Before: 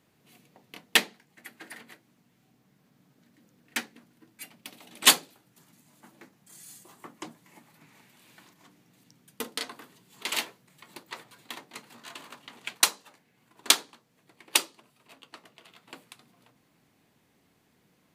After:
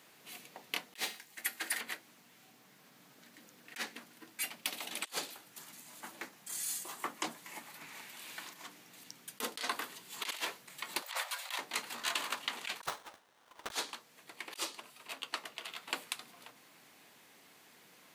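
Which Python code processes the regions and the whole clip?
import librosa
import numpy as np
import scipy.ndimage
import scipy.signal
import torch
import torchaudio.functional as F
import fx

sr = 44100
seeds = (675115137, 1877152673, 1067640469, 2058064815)

y = fx.chain(x, sr, fx.overload_stage(gain_db=14.5),
    fx.high_shelf(hz=4200.0, db=8.5),
    fx.comb_fb(f0_hz=110.0, decay_s=0.4, harmonics='odd', damping=0.0, mix_pct=40), at=(0.96, 1.81))
y = fx.chain(y, sr, fx.steep_highpass(hz=520.0, slope=96),
    fx.over_compress(threshold_db=-48.0, ratio=-1.0), at=(11.02, 11.59))
y = fx.chain(y, sr, fx.highpass(hz=930.0, slope=6),
    fx.running_max(window=17), at=(12.86, 13.72))
y = fx.highpass(y, sr, hz=920.0, slope=6)
y = fx.over_compress(y, sr, threshold_db=-43.0, ratio=-1.0)
y = y * 10.0 ** (2.0 / 20.0)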